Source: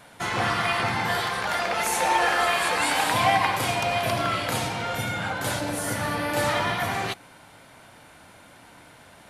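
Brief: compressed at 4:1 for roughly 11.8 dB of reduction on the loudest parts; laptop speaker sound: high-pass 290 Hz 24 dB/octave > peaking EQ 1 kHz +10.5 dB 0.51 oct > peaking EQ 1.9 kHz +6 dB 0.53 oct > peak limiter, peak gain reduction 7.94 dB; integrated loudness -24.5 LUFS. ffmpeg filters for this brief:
-af "acompressor=threshold=0.0282:ratio=4,highpass=f=290:w=0.5412,highpass=f=290:w=1.3066,equalizer=f=1000:t=o:w=0.51:g=10.5,equalizer=f=1900:t=o:w=0.53:g=6,volume=1.88,alimiter=limit=0.158:level=0:latency=1"

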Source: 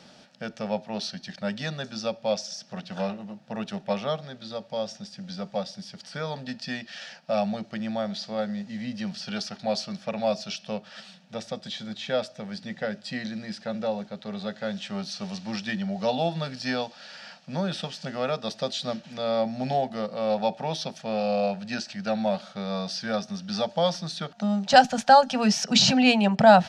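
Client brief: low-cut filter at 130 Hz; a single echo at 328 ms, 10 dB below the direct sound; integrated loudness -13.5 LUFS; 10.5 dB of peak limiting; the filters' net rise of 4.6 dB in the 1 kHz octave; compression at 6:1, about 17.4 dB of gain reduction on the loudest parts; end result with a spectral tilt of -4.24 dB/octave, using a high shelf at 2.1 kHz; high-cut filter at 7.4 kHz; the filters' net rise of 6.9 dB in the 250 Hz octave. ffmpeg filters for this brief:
-af "highpass=130,lowpass=7400,equalizer=f=250:t=o:g=8.5,equalizer=f=1000:t=o:g=4,highshelf=f=2100:g=9,acompressor=threshold=0.0562:ratio=6,alimiter=limit=0.0841:level=0:latency=1,aecho=1:1:328:0.316,volume=7.5"

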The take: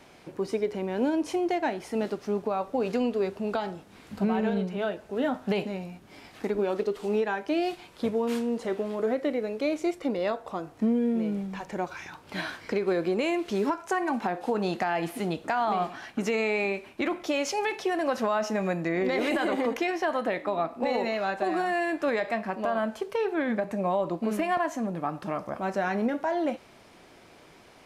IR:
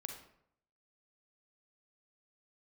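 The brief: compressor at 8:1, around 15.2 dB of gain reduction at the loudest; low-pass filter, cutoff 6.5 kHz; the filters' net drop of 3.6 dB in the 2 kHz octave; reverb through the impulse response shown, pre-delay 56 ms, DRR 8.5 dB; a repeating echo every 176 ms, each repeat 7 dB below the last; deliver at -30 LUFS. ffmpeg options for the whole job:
-filter_complex "[0:a]lowpass=6500,equalizer=f=2000:t=o:g=-4.5,acompressor=threshold=0.0112:ratio=8,aecho=1:1:176|352|528|704|880:0.447|0.201|0.0905|0.0407|0.0183,asplit=2[s0][s1];[1:a]atrim=start_sample=2205,adelay=56[s2];[s1][s2]afir=irnorm=-1:irlink=0,volume=0.501[s3];[s0][s3]amix=inputs=2:normalize=0,volume=3.76"

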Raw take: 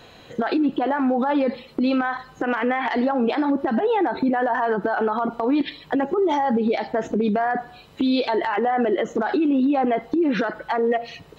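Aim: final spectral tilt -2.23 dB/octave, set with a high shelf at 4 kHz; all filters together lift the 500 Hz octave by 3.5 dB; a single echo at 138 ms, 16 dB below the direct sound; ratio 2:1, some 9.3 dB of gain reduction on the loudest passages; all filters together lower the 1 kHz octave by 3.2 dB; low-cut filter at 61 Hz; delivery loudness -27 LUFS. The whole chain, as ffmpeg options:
-af "highpass=61,equalizer=f=500:t=o:g=6,equalizer=f=1000:t=o:g=-7.5,highshelf=f=4000:g=-7.5,acompressor=threshold=0.0251:ratio=2,aecho=1:1:138:0.158,volume=1.33"

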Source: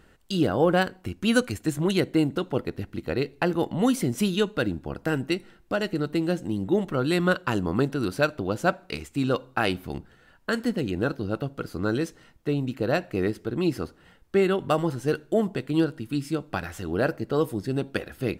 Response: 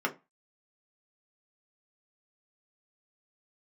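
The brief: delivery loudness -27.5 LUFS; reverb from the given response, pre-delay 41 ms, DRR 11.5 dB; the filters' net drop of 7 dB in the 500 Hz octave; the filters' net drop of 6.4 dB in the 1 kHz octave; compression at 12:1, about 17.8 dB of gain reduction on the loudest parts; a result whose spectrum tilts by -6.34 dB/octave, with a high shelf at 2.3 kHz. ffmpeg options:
-filter_complex "[0:a]equalizer=f=500:t=o:g=-8,equalizer=f=1000:t=o:g=-4,highshelf=f=2300:g=-9,acompressor=threshold=0.0112:ratio=12,asplit=2[s0][s1];[1:a]atrim=start_sample=2205,adelay=41[s2];[s1][s2]afir=irnorm=-1:irlink=0,volume=0.1[s3];[s0][s3]amix=inputs=2:normalize=0,volume=7.08"

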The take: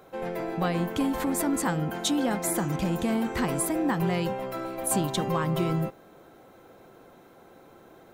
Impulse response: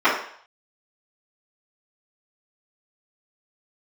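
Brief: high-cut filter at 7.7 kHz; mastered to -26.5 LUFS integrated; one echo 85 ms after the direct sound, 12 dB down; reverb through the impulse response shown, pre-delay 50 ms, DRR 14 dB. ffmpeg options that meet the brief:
-filter_complex "[0:a]lowpass=7700,aecho=1:1:85:0.251,asplit=2[s0][s1];[1:a]atrim=start_sample=2205,adelay=50[s2];[s1][s2]afir=irnorm=-1:irlink=0,volume=0.015[s3];[s0][s3]amix=inputs=2:normalize=0,volume=1.19"

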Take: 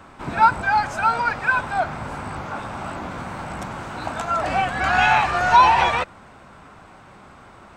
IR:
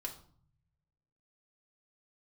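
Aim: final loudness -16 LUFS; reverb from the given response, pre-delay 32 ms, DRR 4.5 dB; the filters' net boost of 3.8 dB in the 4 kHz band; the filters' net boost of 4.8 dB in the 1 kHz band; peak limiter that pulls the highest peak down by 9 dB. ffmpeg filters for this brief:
-filter_complex "[0:a]equalizer=f=1000:t=o:g=5.5,equalizer=f=4000:t=o:g=4.5,alimiter=limit=0.422:level=0:latency=1,asplit=2[s0][s1];[1:a]atrim=start_sample=2205,adelay=32[s2];[s1][s2]afir=irnorm=-1:irlink=0,volume=0.708[s3];[s0][s3]amix=inputs=2:normalize=0,volume=1.26"

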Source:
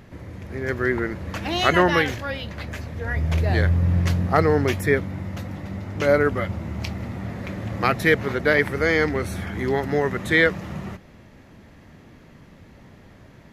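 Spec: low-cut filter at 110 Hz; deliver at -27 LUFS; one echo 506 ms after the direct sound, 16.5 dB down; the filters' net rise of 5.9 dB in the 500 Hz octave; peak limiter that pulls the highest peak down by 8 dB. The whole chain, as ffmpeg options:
-af "highpass=110,equalizer=f=500:t=o:g=7,alimiter=limit=0.376:level=0:latency=1,aecho=1:1:506:0.15,volume=0.562"

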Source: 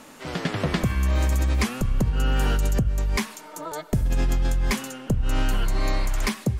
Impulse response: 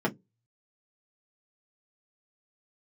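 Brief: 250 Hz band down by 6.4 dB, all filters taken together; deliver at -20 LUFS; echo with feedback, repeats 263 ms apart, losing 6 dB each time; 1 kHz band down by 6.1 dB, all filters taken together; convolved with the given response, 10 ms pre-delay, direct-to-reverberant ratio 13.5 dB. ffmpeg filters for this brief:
-filter_complex "[0:a]equalizer=f=250:t=o:g=-9,equalizer=f=1000:t=o:g=-7.5,aecho=1:1:263|526|789|1052|1315|1578:0.501|0.251|0.125|0.0626|0.0313|0.0157,asplit=2[s0][s1];[1:a]atrim=start_sample=2205,adelay=10[s2];[s1][s2]afir=irnorm=-1:irlink=0,volume=0.0668[s3];[s0][s3]amix=inputs=2:normalize=0,volume=1.88"

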